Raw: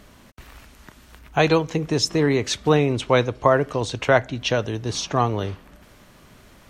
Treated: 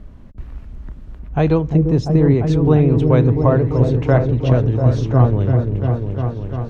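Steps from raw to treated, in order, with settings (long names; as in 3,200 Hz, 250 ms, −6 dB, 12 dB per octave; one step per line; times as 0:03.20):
spectral tilt −4.5 dB per octave
on a send: echo whose low-pass opens from repeat to repeat 346 ms, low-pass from 400 Hz, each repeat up 1 octave, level −3 dB
on the sum: level −4 dB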